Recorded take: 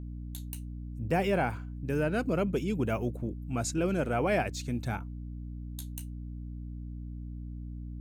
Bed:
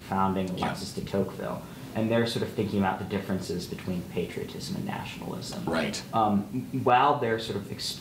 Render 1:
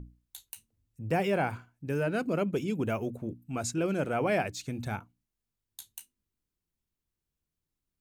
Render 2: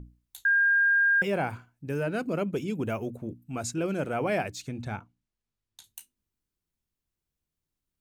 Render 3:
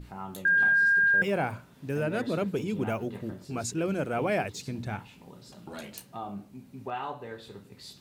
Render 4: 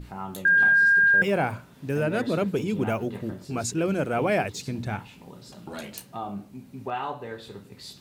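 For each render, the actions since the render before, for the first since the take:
hum notches 60/120/180/240/300 Hz
0.45–1.22 s: bleep 1.61 kHz -19 dBFS; 4.68–5.84 s: distance through air 59 m
add bed -14 dB
trim +4 dB

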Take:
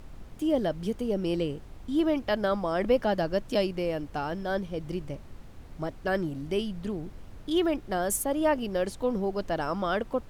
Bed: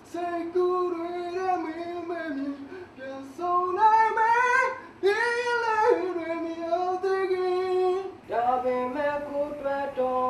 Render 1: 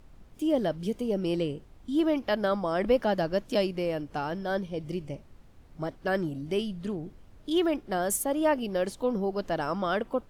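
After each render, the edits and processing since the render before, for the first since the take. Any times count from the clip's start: noise print and reduce 8 dB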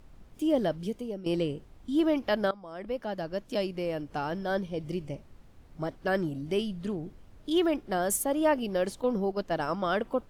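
0.69–1.26 s: fade out, to -13 dB; 2.51–4.33 s: fade in, from -19.5 dB; 9.01–9.97 s: gate -33 dBFS, range -6 dB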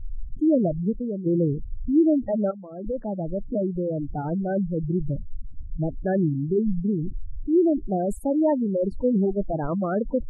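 spectral gate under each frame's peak -10 dB strong; tilt EQ -4.5 dB/octave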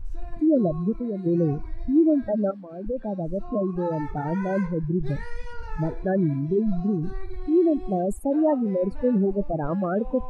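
add bed -16.5 dB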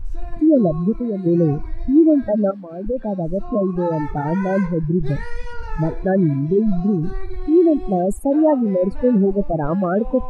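trim +6 dB

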